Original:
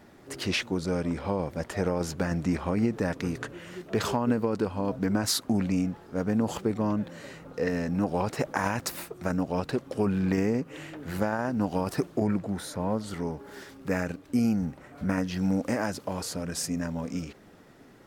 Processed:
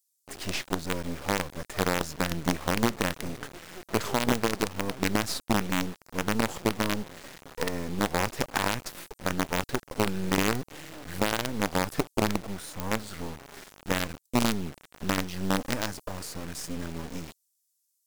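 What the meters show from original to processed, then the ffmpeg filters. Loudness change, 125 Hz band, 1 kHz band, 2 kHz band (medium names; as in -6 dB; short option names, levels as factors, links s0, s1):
-0.5 dB, -3.0 dB, +2.5 dB, +4.0 dB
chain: -filter_complex "[0:a]acrossover=split=6900[s0][s1];[s0]acrusher=bits=4:dc=4:mix=0:aa=0.000001[s2];[s1]alimiter=level_in=3.16:limit=0.0631:level=0:latency=1:release=448,volume=0.316[s3];[s2][s3]amix=inputs=2:normalize=0"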